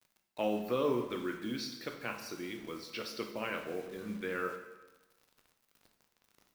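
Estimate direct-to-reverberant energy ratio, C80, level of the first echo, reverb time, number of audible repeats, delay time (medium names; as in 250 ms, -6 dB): 4.0 dB, 9.0 dB, no echo, 1.1 s, no echo, no echo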